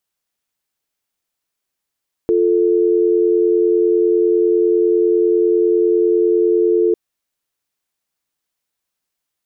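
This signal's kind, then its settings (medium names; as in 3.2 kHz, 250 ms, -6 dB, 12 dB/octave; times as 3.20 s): call progress tone dial tone, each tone -14 dBFS 4.65 s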